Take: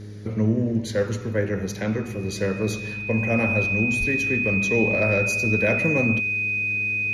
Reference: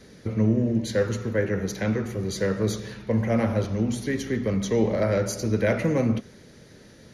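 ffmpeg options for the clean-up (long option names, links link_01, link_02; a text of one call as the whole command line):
ffmpeg -i in.wav -filter_complex "[0:a]bandreject=frequency=103.9:width_type=h:width=4,bandreject=frequency=207.8:width_type=h:width=4,bandreject=frequency=311.7:width_type=h:width=4,bandreject=frequency=415.6:width_type=h:width=4,bandreject=frequency=2500:width=30,asplit=3[link_01][link_02][link_03];[link_01]afade=type=out:start_time=3.99:duration=0.02[link_04];[link_02]highpass=frequency=140:width=0.5412,highpass=frequency=140:width=1.3066,afade=type=in:start_time=3.99:duration=0.02,afade=type=out:start_time=4.11:duration=0.02[link_05];[link_03]afade=type=in:start_time=4.11:duration=0.02[link_06];[link_04][link_05][link_06]amix=inputs=3:normalize=0" out.wav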